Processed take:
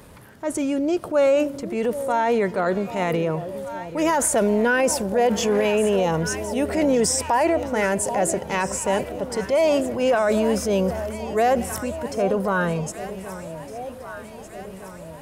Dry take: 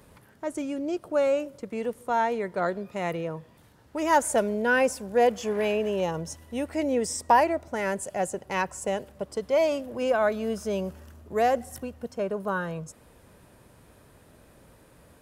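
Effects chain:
transient designer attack −5 dB, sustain +4 dB
delay that swaps between a low-pass and a high-pass 780 ms, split 830 Hz, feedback 75%, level −13 dB
brickwall limiter −20 dBFS, peak gain reduction 10.5 dB
level +8.5 dB

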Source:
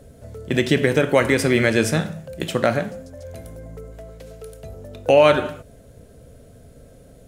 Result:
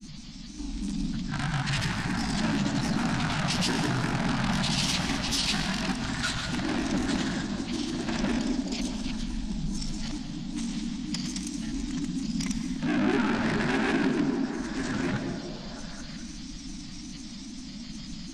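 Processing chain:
delay that plays each chunk backwards 335 ms, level −1 dB
high-shelf EQ 3,800 Hz +11.5 dB
hum removal 82.59 Hz, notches 20
in parallel at +1 dB: downward compressor, threshold −27 dBFS, peak gain reduction 17 dB
on the sum: brickwall limiter −6.5 dBFS, peak gain reduction 8 dB
soft clipping −22.5 dBFS, distortion −6 dB
phaser with its sweep stopped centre 500 Hz, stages 4
change of speed 0.397×
granular cloud, pitch spread up and down by 3 semitones
formants moved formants +5 semitones
echo through a band-pass that steps 210 ms, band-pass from 290 Hz, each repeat 0.7 octaves, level −3 dB
convolution reverb RT60 1.1 s, pre-delay 111 ms, DRR 7.5 dB

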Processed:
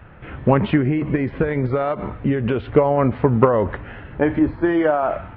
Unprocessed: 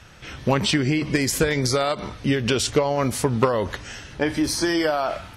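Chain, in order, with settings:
0:00.78–0:02.75: downward compressor 2.5 to 1, threshold −22 dBFS, peak gain reduction 5.5 dB
Gaussian smoothing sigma 4.4 samples
0:04.39–0:05.03: multiband upward and downward expander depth 100%
level +5.5 dB

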